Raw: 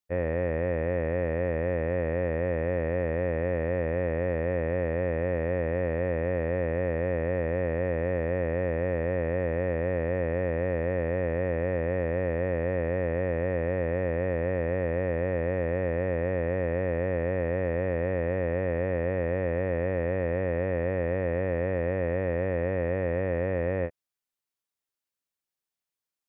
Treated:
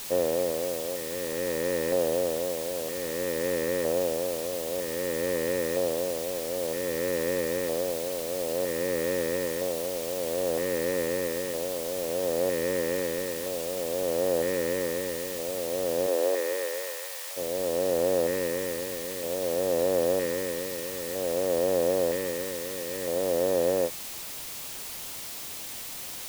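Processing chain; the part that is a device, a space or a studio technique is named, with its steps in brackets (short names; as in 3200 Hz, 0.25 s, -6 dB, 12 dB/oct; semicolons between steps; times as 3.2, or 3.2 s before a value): shortwave radio (BPF 310–2500 Hz; tremolo 0.55 Hz, depth 63%; LFO notch square 0.52 Hz 690–2100 Hz; white noise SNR 9 dB); 16.06–17.36 HPF 260 Hz -> 850 Hz 24 dB/oct; bell 1500 Hz -5 dB 0.64 oct; gain +6 dB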